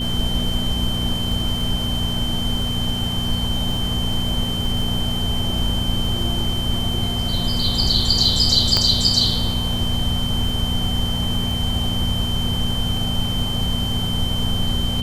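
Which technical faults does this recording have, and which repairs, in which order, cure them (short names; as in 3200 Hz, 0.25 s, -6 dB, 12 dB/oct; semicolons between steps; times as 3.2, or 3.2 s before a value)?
crackle 23/s -26 dBFS
hum 60 Hz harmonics 4 -26 dBFS
tone 3100 Hz -25 dBFS
8.77 pop -4 dBFS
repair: de-click; de-hum 60 Hz, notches 4; notch 3100 Hz, Q 30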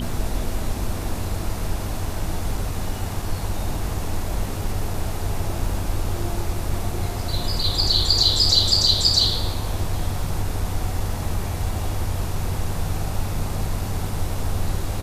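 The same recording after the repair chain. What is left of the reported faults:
none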